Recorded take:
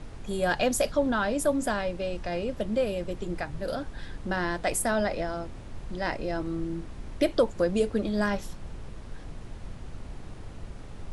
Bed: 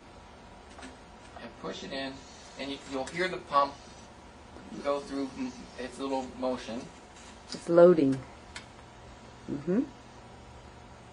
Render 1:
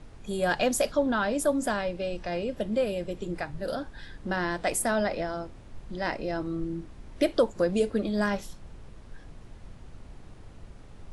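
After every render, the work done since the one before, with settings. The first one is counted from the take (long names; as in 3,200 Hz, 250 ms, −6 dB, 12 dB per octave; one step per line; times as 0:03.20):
noise reduction from a noise print 6 dB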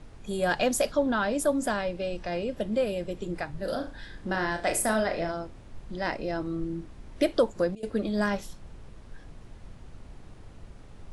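0:03.59–0:05.32: flutter between parallel walls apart 6.2 metres, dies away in 0.3 s
0:07.37–0:08.21: duck −22 dB, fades 0.38 s logarithmic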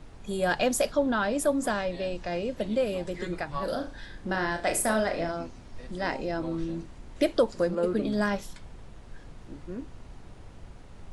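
mix in bed −10 dB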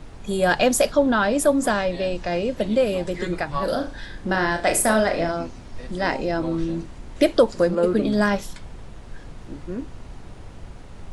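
level +7 dB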